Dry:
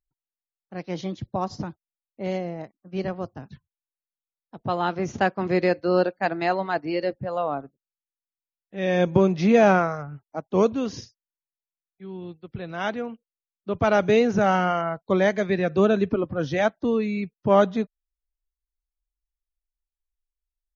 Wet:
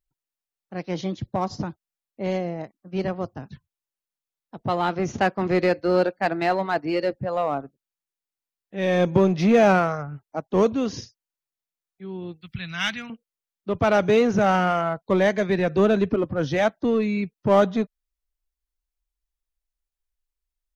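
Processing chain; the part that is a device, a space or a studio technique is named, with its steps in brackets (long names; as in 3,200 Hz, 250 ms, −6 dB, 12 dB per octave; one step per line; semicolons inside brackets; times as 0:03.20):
parallel distortion (in parallel at −4.5 dB: hard clipping −22.5 dBFS, distortion −6 dB)
0:12.41–0:13.10: on the sum: drawn EQ curve 180 Hz 0 dB, 440 Hz −22 dB, 2,200 Hz +9 dB
level −1.5 dB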